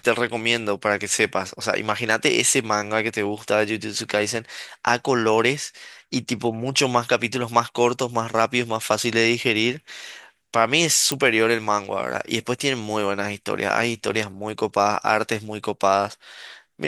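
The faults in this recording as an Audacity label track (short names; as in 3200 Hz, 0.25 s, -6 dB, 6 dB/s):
11.120000	11.120000	pop -6 dBFS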